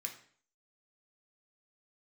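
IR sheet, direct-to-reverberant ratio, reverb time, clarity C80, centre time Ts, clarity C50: 1.0 dB, 0.50 s, 13.5 dB, 16 ms, 9.5 dB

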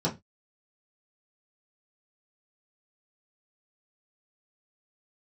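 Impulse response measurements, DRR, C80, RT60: −6.0 dB, 24.0 dB, 0.20 s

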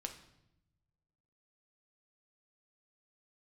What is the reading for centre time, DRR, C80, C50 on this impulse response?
14 ms, 4.0 dB, 13.0 dB, 10.0 dB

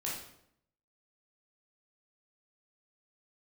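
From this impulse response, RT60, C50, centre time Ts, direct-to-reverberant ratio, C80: 0.70 s, 2.0 dB, 48 ms, −5.5 dB, 6.5 dB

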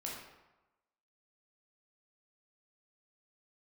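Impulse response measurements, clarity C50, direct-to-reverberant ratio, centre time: 1.5 dB, −4.0 dB, 58 ms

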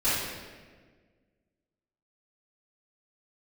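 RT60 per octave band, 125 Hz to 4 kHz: 1.9, 2.0, 1.8, 1.3, 1.4, 1.1 seconds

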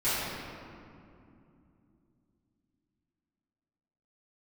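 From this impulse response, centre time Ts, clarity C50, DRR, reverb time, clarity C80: 158 ms, −4.0 dB, −15.5 dB, 2.6 s, −1.5 dB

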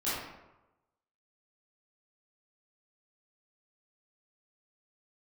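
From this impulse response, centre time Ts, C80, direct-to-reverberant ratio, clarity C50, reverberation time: 80 ms, 2.0 dB, −12.5 dB, −2.0 dB, 1.0 s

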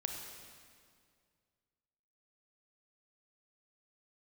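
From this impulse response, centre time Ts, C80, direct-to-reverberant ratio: 64 ms, 4.5 dB, 2.5 dB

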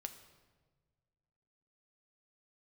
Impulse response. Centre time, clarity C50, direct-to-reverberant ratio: 13 ms, 11.0 dB, 7.0 dB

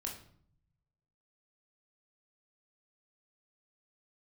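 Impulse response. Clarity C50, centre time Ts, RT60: 7.0 dB, 25 ms, 0.60 s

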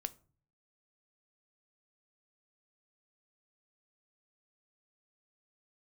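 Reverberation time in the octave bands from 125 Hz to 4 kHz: 0.75, 0.60, 0.45, 0.40, 0.30, 0.25 seconds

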